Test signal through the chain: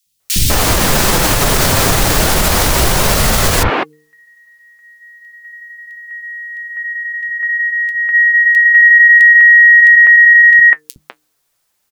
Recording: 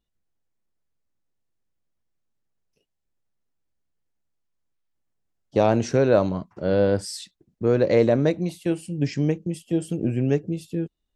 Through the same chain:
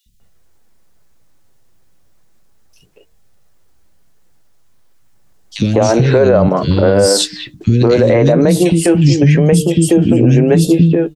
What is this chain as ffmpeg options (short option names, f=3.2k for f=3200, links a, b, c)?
-filter_complex "[0:a]bandreject=f=152.3:t=h:w=4,bandreject=f=304.6:t=h:w=4,bandreject=f=456.9:t=h:w=4,acompressor=threshold=-26dB:ratio=10,flanger=delay=1.5:depth=6.2:regen=-59:speed=0.32:shape=sinusoidal,acrossover=split=260|2700[a][b][c];[a]adelay=60[d];[b]adelay=200[e];[d][e][c]amix=inputs=3:normalize=0,alimiter=level_in=31.5dB:limit=-1dB:release=50:level=0:latency=1,volume=-1dB"